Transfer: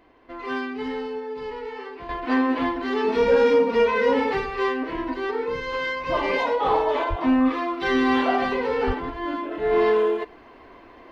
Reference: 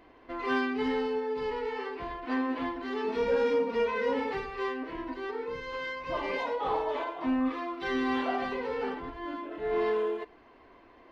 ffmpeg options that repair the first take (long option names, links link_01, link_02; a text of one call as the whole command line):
ffmpeg -i in.wav -filter_complex "[0:a]asplit=3[link_01][link_02][link_03];[link_01]afade=type=out:start_time=7.09:duration=0.02[link_04];[link_02]highpass=frequency=140:width=0.5412,highpass=frequency=140:width=1.3066,afade=type=in:start_time=7.09:duration=0.02,afade=type=out:start_time=7.21:duration=0.02[link_05];[link_03]afade=type=in:start_time=7.21:duration=0.02[link_06];[link_04][link_05][link_06]amix=inputs=3:normalize=0,asplit=3[link_07][link_08][link_09];[link_07]afade=type=out:start_time=8.86:duration=0.02[link_10];[link_08]highpass=frequency=140:width=0.5412,highpass=frequency=140:width=1.3066,afade=type=in:start_time=8.86:duration=0.02,afade=type=out:start_time=8.98:duration=0.02[link_11];[link_09]afade=type=in:start_time=8.98:duration=0.02[link_12];[link_10][link_11][link_12]amix=inputs=3:normalize=0,asetnsamples=nb_out_samples=441:pad=0,asendcmd='2.09 volume volume -9dB',volume=0dB" out.wav